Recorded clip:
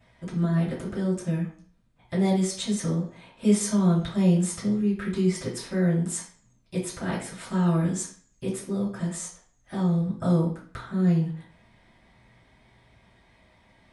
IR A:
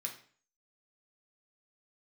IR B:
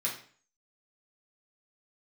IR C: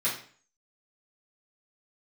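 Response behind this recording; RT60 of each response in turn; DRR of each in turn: C; 0.45, 0.45, 0.45 seconds; 0.5, −5.0, −10.0 decibels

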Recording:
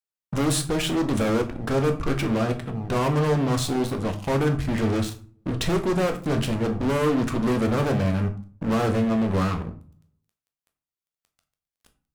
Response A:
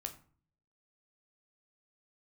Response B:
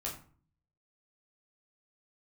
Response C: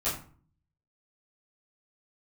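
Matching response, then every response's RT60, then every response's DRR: A; 0.45, 0.45, 0.45 seconds; 5.0, −4.0, −12.5 decibels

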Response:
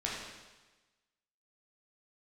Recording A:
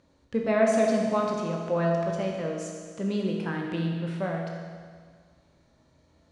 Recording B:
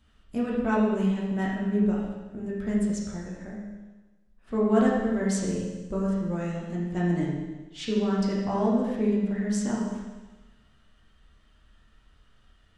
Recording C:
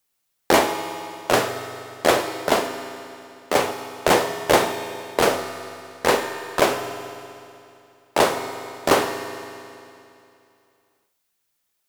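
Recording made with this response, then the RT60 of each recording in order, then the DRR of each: B; 1.8, 1.2, 2.7 seconds; −0.5, −5.0, 7.0 decibels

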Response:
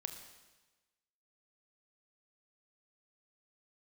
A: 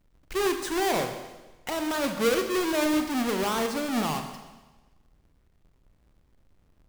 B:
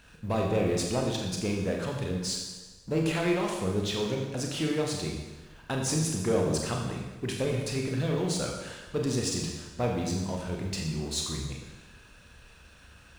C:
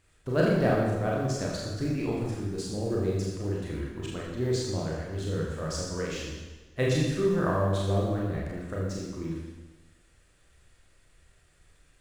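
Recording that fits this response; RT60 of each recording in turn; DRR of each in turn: A; 1.2, 1.2, 1.2 seconds; 5.5, 0.0, −4.0 decibels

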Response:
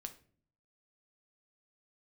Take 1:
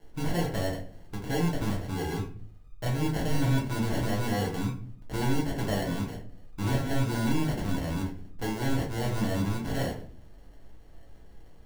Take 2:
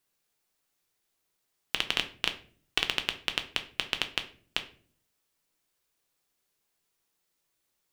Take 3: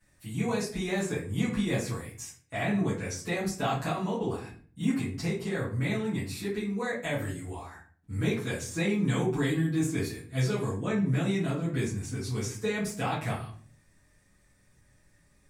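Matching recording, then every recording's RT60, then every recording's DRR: 2; 0.45, 0.50, 0.45 seconds; −2.5, 6.5, −12.5 decibels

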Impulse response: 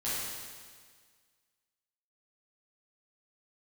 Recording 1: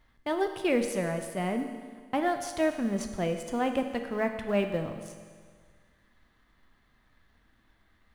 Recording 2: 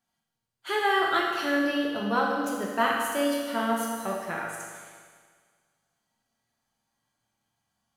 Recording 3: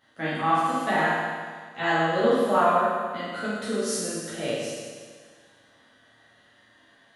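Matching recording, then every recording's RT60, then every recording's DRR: 3; 1.7, 1.7, 1.7 seconds; 6.0, −2.5, −12.0 decibels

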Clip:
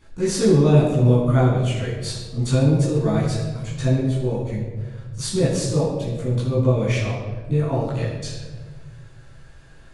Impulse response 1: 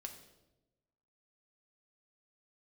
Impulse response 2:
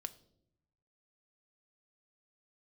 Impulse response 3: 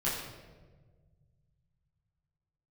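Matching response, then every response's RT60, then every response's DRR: 3; 1.0, 0.75, 1.4 seconds; 3.5, 8.5, −9.0 decibels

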